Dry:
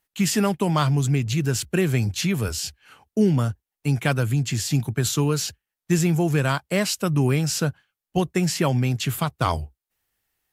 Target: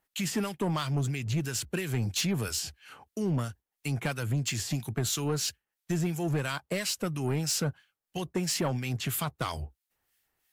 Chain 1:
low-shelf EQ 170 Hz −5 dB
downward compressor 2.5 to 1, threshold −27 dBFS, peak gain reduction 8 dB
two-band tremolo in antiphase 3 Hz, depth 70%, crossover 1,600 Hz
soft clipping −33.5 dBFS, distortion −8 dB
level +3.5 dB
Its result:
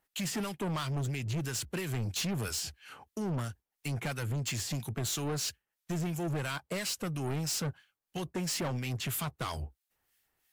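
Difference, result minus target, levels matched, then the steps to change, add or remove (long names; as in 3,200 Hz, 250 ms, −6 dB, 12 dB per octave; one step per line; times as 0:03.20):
soft clipping: distortion +7 dB
change: soft clipping −25.5 dBFS, distortion −15 dB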